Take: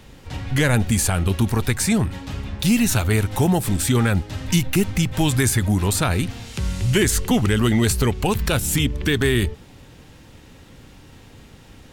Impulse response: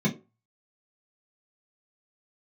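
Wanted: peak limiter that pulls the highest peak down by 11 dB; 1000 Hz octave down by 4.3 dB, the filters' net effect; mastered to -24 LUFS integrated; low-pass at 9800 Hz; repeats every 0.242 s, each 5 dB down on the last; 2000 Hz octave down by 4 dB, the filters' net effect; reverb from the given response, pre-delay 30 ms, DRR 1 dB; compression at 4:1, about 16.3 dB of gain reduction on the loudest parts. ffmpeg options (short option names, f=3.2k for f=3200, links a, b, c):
-filter_complex "[0:a]lowpass=9.8k,equalizer=f=1k:t=o:g=-5,equalizer=f=2k:t=o:g=-3.5,acompressor=threshold=-35dB:ratio=4,alimiter=level_in=5.5dB:limit=-24dB:level=0:latency=1,volume=-5.5dB,aecho=1:1:242|484|726|968|1210|1452|1694:0.562|0.315|0.176|0.0988|0.0553|0.031|0.0173,asplit=2[a][b];[1:a]atrim=start_sample=2205,adelay=30[c];[b][c]afir=irnorm=-1:irlink=0,volume=-11dB[d];[a][d]amix=inputs=2:normalize=0,volume=2dB"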